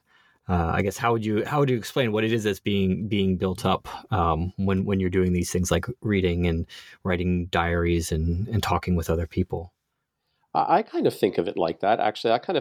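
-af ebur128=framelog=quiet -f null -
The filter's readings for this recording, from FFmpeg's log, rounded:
Integrated loudness:
  I:         -24.7 LUFS
  Threshold: -34.9 LUFS
Loudness range:
  LRA:         1.8 LU
  Threshold: -45.2 LUFS
  LRA low:   -26.2 LUFS
  LRA high:  -24.4 LUFS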